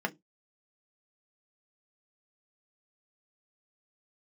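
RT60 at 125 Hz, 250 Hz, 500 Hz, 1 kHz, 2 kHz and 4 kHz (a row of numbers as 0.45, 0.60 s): 0.25, 0.25, 0.20, 0.15, 0.15, 0.15 s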